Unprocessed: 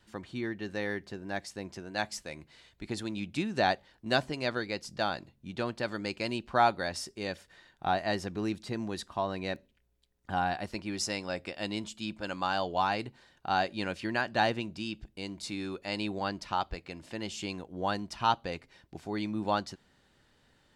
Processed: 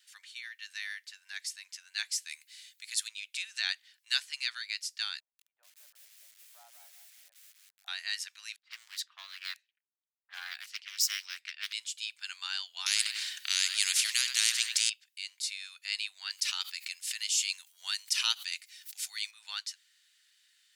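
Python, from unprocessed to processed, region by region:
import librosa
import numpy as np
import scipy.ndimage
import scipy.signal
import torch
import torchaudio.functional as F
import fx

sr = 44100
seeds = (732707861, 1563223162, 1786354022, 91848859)

y = fx.chain(x, sr, fx.high_shelf(hz=6700.0, db=11.0),
    fx.notch(hz=1400.0, q=24.0), at=(2.29, 3.08))
y = fx.chain(y, sr, fx.cheby1_bandpass(low_hz=140.0, high_hz=690.0, order=3),
    fx.echo_crushed(ms=184, feedback_pct=35, bits=9, wet_db=-6.0), at=(5.2, 7.88))
y = fx.chain(y, sr, fx.resample_bad(factor=2, down='none', up='hold'),
    fx.env_lowpass(base_hz=370.0, full_db=-31.5),
    fx.doppler_dist(depth_ms=0.55), at=(8.56, 11.73))
y = fx.chain(y, sr, fx.echo_feedback(ms=97, feedback_pct=32, wet_db=-18.0),
    fx.spectral_comp(ratio=4.0), at=(12.86, 14.9))
y = fx.chain(y, sr, fx.high_shelf(hz=4700.0, db=12.0),
    fx.notch(hz=1600.0, q=26.0),
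    fx.pre_swell(db_per_s=110.0), at=(16.3, 19.31))
y = scipy.signal.sosfilt(scipy.signal.cheby2(4, 80, 310.0, 'highpass', fs=sr, output='sos'), y)
y = fx.high_shelf(y, sr, hz=4100.0, db=10.5)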